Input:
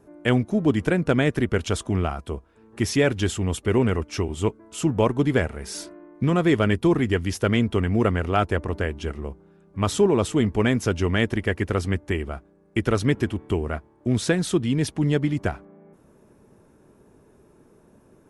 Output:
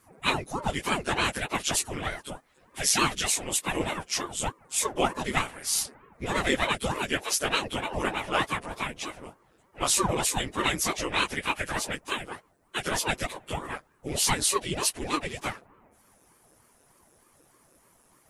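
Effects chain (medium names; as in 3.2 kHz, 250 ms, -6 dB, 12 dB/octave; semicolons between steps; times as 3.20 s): phase randomisation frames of 50 ms; tilt EQ +4 dB/octave; ring modulator with a swept carrier 420 Hz, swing 85%, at 3.3 Hz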